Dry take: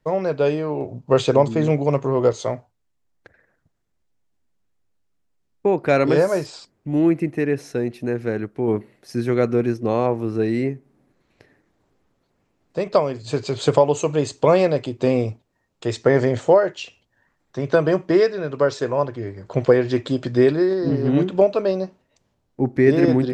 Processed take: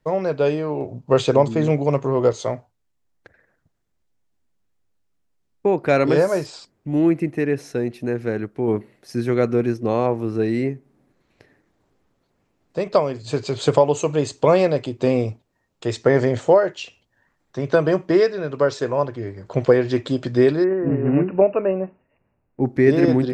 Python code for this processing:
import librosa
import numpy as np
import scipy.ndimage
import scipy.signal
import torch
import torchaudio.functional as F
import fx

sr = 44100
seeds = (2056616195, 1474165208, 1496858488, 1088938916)

y = fx.brickwall_lowpass(x, sr, high_hz=2900.0, at=(20.64, 22.61))